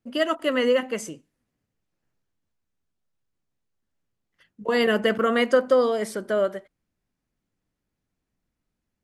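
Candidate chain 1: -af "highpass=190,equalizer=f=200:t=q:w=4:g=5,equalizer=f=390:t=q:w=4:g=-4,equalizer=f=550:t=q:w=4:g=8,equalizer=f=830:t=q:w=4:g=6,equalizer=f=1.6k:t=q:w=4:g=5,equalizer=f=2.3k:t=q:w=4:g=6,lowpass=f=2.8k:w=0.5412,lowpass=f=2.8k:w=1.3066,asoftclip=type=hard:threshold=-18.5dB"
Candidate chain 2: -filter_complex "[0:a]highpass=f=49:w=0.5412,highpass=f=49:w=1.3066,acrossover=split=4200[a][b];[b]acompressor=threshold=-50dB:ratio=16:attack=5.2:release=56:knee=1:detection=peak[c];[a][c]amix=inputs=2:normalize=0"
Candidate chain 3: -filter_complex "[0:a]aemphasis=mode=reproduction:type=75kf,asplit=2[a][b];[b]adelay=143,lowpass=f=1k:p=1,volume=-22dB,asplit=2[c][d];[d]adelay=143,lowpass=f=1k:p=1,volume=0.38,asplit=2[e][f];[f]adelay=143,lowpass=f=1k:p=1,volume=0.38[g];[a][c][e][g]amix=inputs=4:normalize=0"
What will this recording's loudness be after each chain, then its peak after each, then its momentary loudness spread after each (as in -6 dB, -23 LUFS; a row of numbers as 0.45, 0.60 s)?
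-23.5, -23.0, -23.5 LUFS; -18.5, -8.5, -9.0 dBFS; 10, 13, 13 LU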